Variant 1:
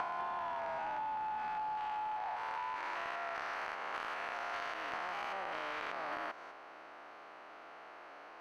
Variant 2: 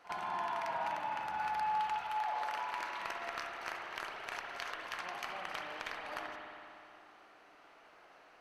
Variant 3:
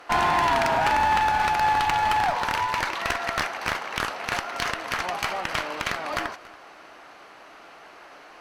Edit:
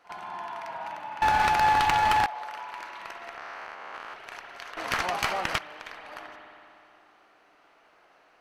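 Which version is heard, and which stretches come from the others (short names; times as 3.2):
2
1.22–2.26 from 3
3.37–4.14 from 1
4.77–5.58 from 3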